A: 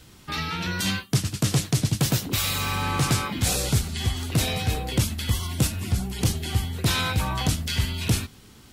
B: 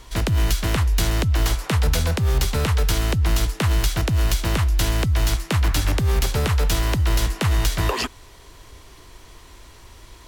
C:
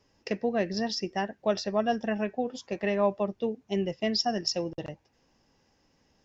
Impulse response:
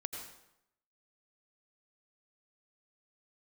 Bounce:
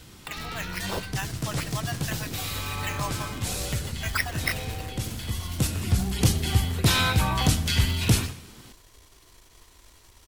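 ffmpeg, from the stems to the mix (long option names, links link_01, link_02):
-filter_complex "[0:a]volume=0dB,asplit=2[link_01][link_02];[link_02]volume=-9dB[link_03];[1:a]highshelf=frequency=4200:gain=8.5,acompressor=threshold=-23dB:ratio=6,aeval=exprs='(tanh(39.8*val(0)+0.7)-tanh(0.7))/39.8':channel_layout=same,adelay=250,volume=-7dB[link_04];[2:a]highpass=frequency=1000:width=0.5412,highpass=frequency=1000:width=1.3066,acrusher=samples=8:mix=1:aa=0.000001:lfo=1:lforange=4.8:lforate=3.5,volume=1dB,asplit=3[link_05][link_06][link_07];[link_06]volume=-15.5dB[link_08];[link_07]apad=whole_len=384671[link_09];[link_01][link_09]sidechaincompress=threshold=-54dB:ratio=8:attack=6.7:release=687[link_10];[3:a]atrim=start_sample=2205[link_11];[link_03][link_08]amix=inputs=2:normalize=0[link_12];[link_12][link_11]afir=irnorm=-1:irlink=0[link_13];[link_10][link_04][link_05][link_13]amix=inputs=4:normalize=0"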